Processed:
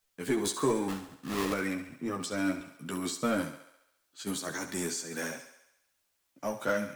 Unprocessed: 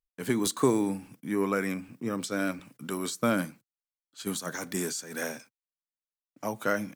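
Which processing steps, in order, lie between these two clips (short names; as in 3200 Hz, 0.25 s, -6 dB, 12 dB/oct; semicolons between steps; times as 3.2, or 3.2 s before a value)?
bell 12000 Hz -6 dB 0.29 oct; 0.88–1.53 sample-rate reducer 1500 Hz, jitter 20%; in parallel at -3 dB: hard clip -28 dBFS, distortion -7 dB; on the sum: requantised 12-bit, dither triangular; chorus voices 4, 0.34 Hz, delay 13 ms, depth 1.9 ms; on a send: thinning echo 69 ms, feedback 61%, high-pass 320 Hz, level -11 dB; on the sum: gain -2.5 dB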